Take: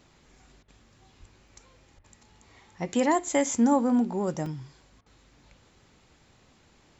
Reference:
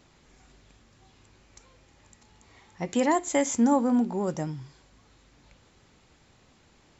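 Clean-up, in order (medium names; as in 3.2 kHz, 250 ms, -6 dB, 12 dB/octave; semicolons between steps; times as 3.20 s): de-plosive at 1.19/1.96 s; interpolate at 1.48/4.46/4.81 s, 2.2 ms; interpolate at 0.63/1.99/5.01 s, 50 ms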